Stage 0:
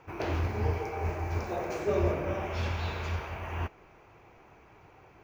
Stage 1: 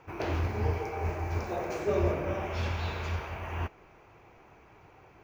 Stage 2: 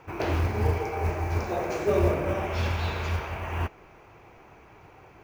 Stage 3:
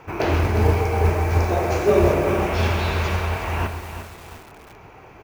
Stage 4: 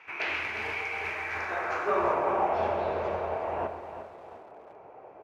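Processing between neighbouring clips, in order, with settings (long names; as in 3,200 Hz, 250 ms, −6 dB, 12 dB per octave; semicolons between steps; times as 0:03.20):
no processing that can be heard
floating-point word with a short mantissa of 4 bits; level +4.5 dB
single-tap delay 128 ms −11.5 dB; on a send at −16 dB: convolution reverb RT60 0.60 s, pre-delay 5 ms; on the sum: feedback echo at a low word length 355 ms, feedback 55%, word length 7 bits, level −9 dB; level +6.5 dB
band-pass filter sweep 2,300 Hz → 600 Hz, 0:01.10–0:02.86; level +2.5 dB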